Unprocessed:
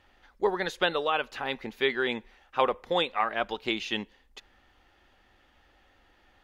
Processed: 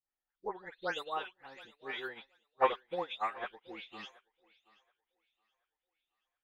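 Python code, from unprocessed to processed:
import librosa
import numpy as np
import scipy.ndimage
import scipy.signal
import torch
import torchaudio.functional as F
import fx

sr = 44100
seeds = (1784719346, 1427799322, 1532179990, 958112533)

y = fx.spec_delay(x, sr, highs='late', ms=286)
y = fx.low_shelf(y, sr, hz=370.0, db=-4.0)
y = fx.echo_thinned(y, sr, ms=726, feedback_pct=55, hz=390.0, wet_db=-9.0)
y = fx.upward_expand(y, sr, threshold_db=-45.0, expansion=2.5)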